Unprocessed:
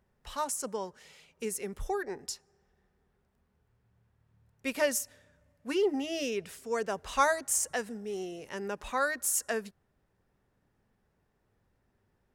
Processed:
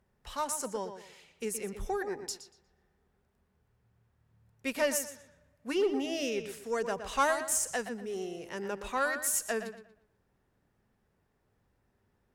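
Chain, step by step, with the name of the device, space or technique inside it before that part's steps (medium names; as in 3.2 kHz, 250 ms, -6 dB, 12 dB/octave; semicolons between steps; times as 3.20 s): rockabilly slapback (valve stage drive 17 dB, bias 0.2; tape echo 119 ms, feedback 32%, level -8.5 dB, low-pass 4.3 kHz)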